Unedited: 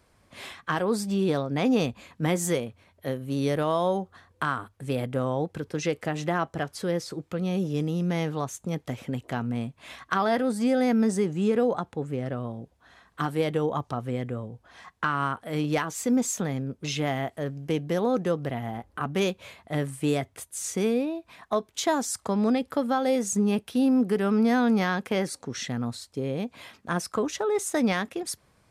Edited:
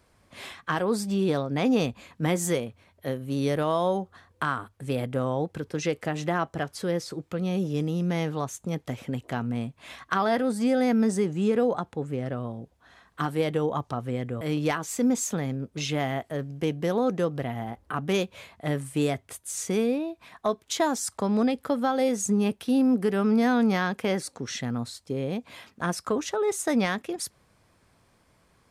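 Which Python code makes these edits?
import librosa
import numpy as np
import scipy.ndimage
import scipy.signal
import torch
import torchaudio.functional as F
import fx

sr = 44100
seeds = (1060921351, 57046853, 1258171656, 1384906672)

y = fx.edit(x, sr, fx.cut(start_s=14.41, length_s=1.07), tone=tone)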